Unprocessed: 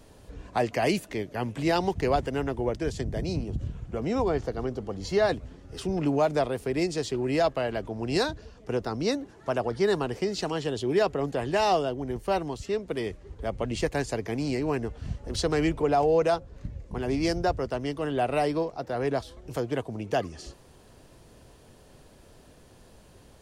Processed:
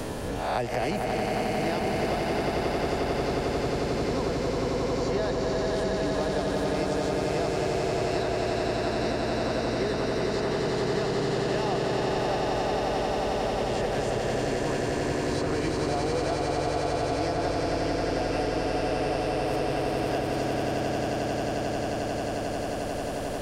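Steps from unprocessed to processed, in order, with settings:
peak hold with a rise ahead of every peak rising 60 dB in 0.43 s
echo that builds up and dies away 89 ms, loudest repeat 8, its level −4 dB
multiband upward and downward compressor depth 100%
level −9 dB

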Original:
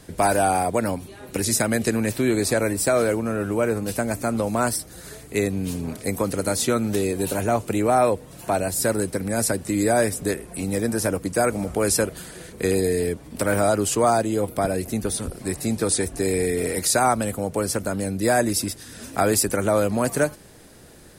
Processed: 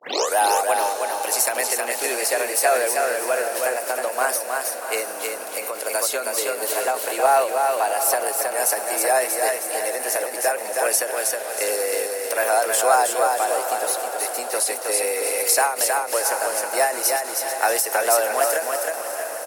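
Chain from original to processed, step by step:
turntable start at the beginning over 0.41 s
high-pass filter 480 Hz 24 dB per octave
high-shelf EQ 12,000 Hz +6.5 dB
on a send: feedback delay with all-pass diffusion 808 ms, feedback 53%, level −10.5 dB
on the sum: pitch vibrato 3.5 Hz 12 cents
in parallel at −11 dB: floating-point word with a short mantissa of 2 bits
on the sum: repeating echo 345 ms, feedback 35%, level −4 dB
wrong playback speed 44.1 kHz file played as 48 kHz
every ending faded ahead of time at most 110 dB per second

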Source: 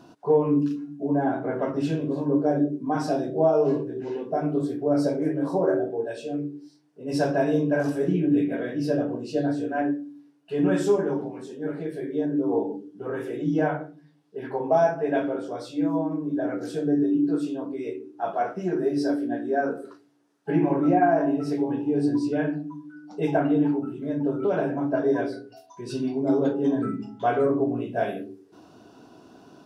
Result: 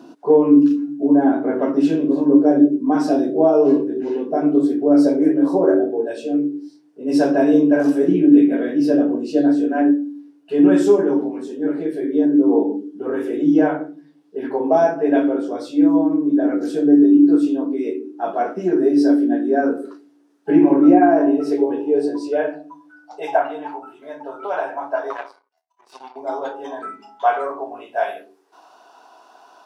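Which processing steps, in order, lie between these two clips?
0:25.10–0:26.16: power curve on the samples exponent 2
high-pass filter sweep 270 Hz → 850 Hz, 0:20.79–0:23.55
level +3.5 dB

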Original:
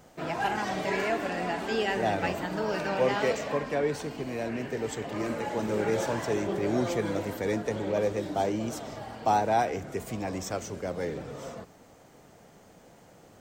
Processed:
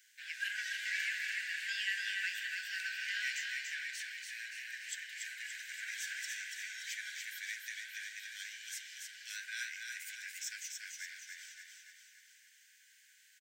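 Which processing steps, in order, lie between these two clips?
Chebyshev high-pass filter 1,500 Hz, order 10
repeating echo 287 ms, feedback 54%, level −4 dB
level −2 dB

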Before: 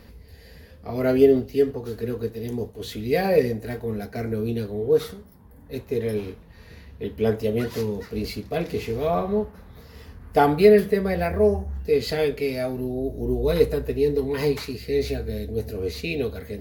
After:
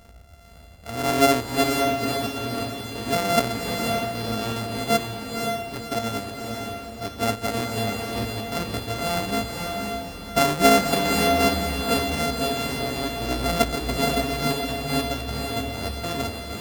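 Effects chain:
samples sorted by size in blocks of 64 samples
feedback delay with all-pass diffusion 527 ms, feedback 44%, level −3 dB
level −2.5 dB

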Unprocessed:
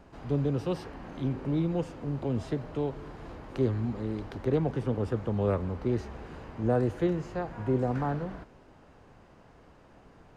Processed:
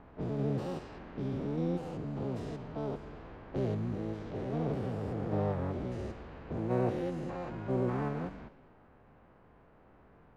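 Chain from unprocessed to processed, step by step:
spectrum averaged block by block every 200 ms
pitch-shifted copies added +7 semitones −5 dB
low-pass that shuts in the quiet parts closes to 1,800 Hz, open at −28 dBFS
on a send: convolution reverb RT60 1.4 s, pre-delay 10 ms, DRR 18 dB
on the sum: level −4 dB

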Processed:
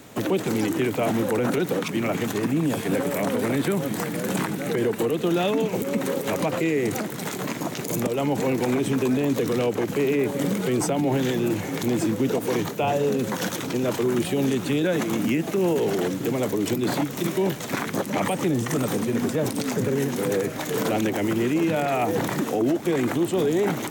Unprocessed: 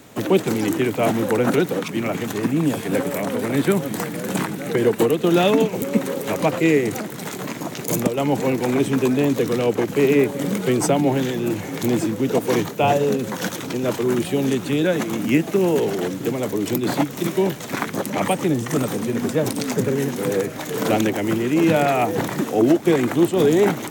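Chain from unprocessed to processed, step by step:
brickwall limiter −15 dBFS, peak gain reduction 9.5 dB

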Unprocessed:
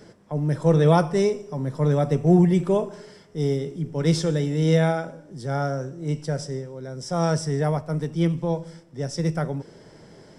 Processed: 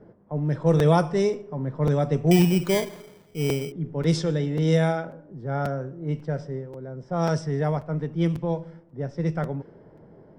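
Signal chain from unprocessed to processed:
low-pass that shuts in the quiet parts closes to 910 Hz, open at −13.5 dBFS
0:02.31–0:03.72: sample-rate reduction 2,700 Hz, jitter 0%
regular buffer underruns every 0.54 s, samples 256, repeat, from 0:00.79
level −1.5 dB

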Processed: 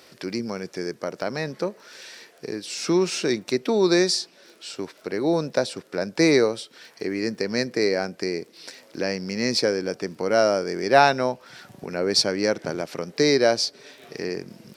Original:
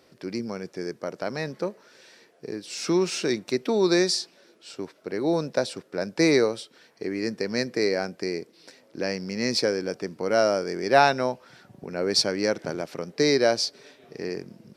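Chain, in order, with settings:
surface crackle 19 per second −49 dBFS
one half of a high-frequency compander encoder only
level +2 dB

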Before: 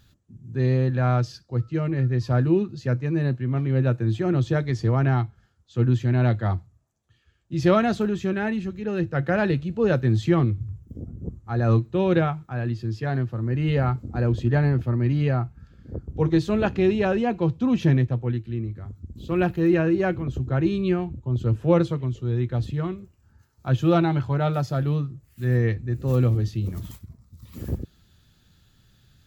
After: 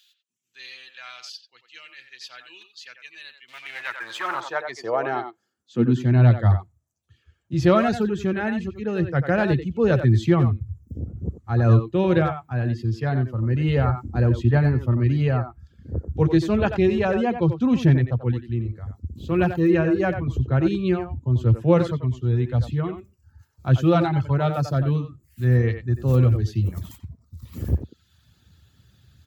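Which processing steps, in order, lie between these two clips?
reverb reduction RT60 0.7 s
0:03.48–0:04.41: leveller curve on the samples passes 2
far-end echo of a speakerphone 90 ms, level −8 dB
high-pass filter sweep 3,000 Hz → 74 Hz, 0:03.49–0:06.73
level +1.5 dB

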